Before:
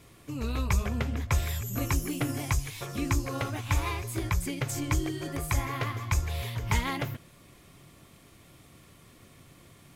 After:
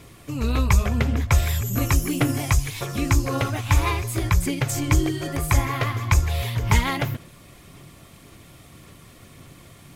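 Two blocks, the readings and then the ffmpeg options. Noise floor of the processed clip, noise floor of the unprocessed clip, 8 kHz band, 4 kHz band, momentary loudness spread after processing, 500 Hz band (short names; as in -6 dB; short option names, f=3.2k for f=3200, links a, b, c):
-48 dBFS, -56 dBFS, +7.0 dB, +7.0 dB, 6 LU, +7.5 dB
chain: -af "aphaser=in_gain=1:out_gain=1:delay=1.6:decay=0.21:speed=1.8:type=sinusoidal,volume=7dB"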